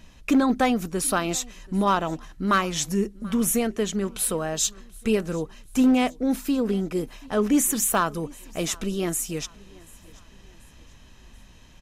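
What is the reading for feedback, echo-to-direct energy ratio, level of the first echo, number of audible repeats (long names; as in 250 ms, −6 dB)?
43%, −23.0 dB, −24.0 dB, 2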